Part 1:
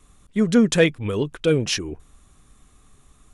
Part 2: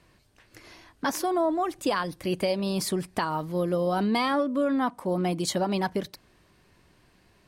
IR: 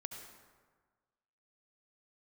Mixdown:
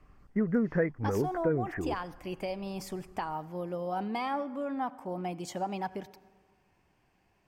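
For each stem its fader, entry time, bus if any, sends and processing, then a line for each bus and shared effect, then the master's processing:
−3.5 dB, 0.00 s, no send, Chebyshev low-pass filter 2,000 Hz, order 6
−12.0 dB, 0.00 s, send −9.5 dB, thirty-one-band graphic EQ 800 Hz +10 dB, 2,500 Hz +4 dB, 4,000 Hz −10 dB, 10,000 Hz −10 dB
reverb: on, RT60 1.5 s, pre-delay 63 ms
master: downward compressor 4 to 1, threshold −25 dBFS, peak gain reduction 9 dB

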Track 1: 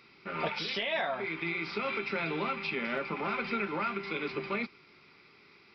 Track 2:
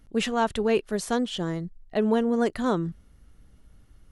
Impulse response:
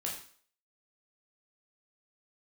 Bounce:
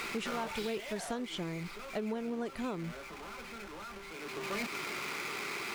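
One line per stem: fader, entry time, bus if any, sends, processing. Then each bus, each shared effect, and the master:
−3.0 dB, 0.00 s, no send, each half-wave held at its own peak; mid-hump overdrive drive 16 dB, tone 4,700 Hz, clips at −21 dBFS; envelope flattener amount 50%; automatic ducking −17 dB, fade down 1.30 s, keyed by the second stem
−6.5 dB, 0.00 s, no send, no processing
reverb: not used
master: downward compressor 6 to 1, threshold −33 dBFS, peak gain reduction 9 dB

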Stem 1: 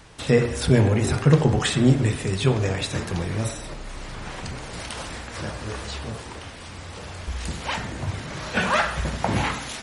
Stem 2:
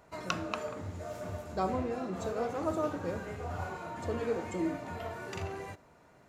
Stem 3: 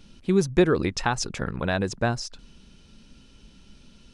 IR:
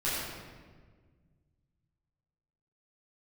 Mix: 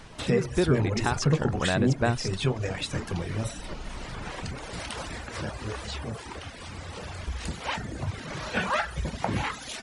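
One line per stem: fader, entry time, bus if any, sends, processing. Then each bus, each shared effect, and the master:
+1.0 dB, 0.00 s, no send, reverb reduction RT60 0.76 s
−13.5 dB, 0.00 s, no send, compressor whose output falls as the input rises −41 dBFS
−3.5 dB, 0.00 s, no send, automatic gain control gain up to 13 dB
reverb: not used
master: high-shelf EQ 7,100 Hz −5.5 dB; downward compressor 1.5 to 1, threshold −33 dBFS, peak gain reduction 8.5 dB

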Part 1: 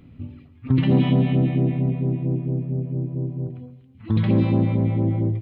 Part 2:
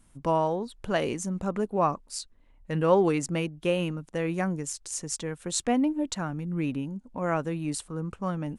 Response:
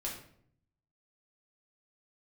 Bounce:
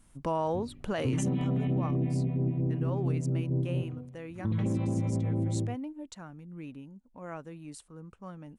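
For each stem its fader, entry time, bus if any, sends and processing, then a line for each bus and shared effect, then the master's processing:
−3.0 dB, 0.35 s, no send, high-shelf EQ 2,400 Hz −9 dB; automatic gain control gain up to 10 dB; automatic ducking −9 dB, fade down 1.20 s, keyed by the second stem
0:01.30 −0.5 dB → 0:01.58 −13.5 dB, 0.00 s, no send, no processing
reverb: not used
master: brickwall limiter −21.5 dBFS, peak gain reduction 8.5 dB

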